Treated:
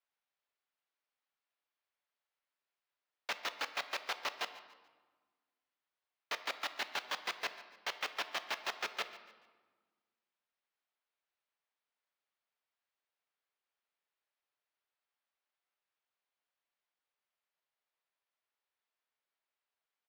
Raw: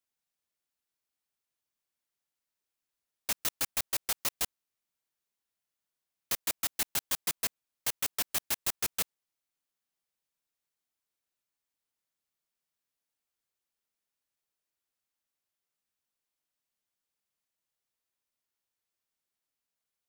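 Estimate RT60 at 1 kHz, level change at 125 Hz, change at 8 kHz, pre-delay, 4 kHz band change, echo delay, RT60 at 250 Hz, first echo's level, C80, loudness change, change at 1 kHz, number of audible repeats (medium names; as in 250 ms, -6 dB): 1.4 s, under -15 dB, -17.5 dB, 4 ms, -3.0 dB, 144 ms, 2.0 s, -17.5 dB, 12.5 dB, -7.5 dB, +2.5 dB, 2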